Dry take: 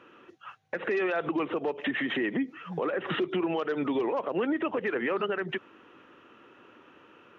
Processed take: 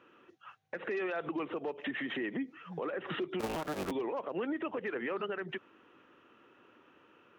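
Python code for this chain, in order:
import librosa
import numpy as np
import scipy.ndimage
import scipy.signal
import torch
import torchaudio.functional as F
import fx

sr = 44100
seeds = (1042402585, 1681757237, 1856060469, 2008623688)

y = fx.cycle_switch(x, sr, every=3, mode='inverted', at=(3.39, 3.9), fade=0.02)
y = F.gain(torch.from_numpy(y), -7.0).numpy()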